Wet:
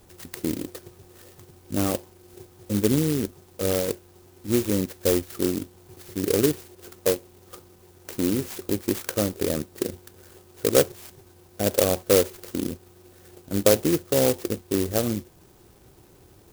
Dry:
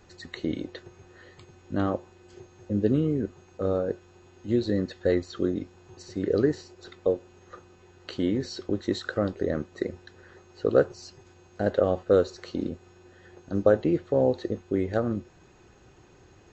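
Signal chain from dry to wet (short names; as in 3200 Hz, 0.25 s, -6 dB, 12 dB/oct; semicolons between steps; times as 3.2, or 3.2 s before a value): clock jitter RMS 0.14 ms; gain +2 dB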